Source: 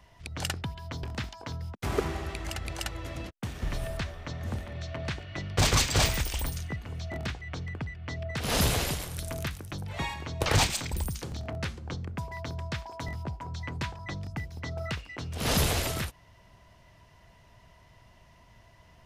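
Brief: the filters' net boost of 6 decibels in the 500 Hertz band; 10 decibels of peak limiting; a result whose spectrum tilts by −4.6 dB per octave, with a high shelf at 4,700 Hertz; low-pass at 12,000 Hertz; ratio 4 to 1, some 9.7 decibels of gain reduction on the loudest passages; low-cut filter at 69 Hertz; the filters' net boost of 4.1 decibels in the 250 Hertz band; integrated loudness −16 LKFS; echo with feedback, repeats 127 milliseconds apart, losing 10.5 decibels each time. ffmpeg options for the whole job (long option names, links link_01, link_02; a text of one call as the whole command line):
ffmpeg -i in.wav -af "highpass=69,lowpass=12000,equalizer=frequency=250:width_type=o:gain=4,equalizer=frequency=500:width_type=o:gain=6.5,highshelf=frequency=4700:gain=7.5,acompressor=threshold=-28dB:ratio=4,alimiter=level_in=0.5dB:limit=-24dB:level=0:latency=1,volume=-0.5dB,aecho=1:1:127|254|381:0.299|0.0896|0.0269,volume=20dB" out.wav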